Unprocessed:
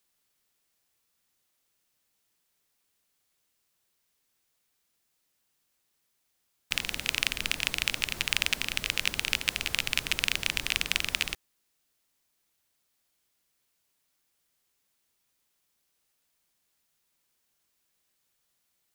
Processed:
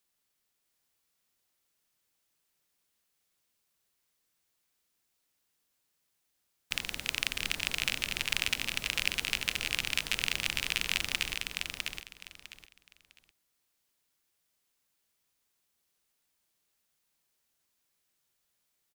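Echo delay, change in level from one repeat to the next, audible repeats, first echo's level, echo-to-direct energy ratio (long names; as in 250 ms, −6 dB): 654 ms, −13.0 dB, 3, −4.0 dB, −4.0 dB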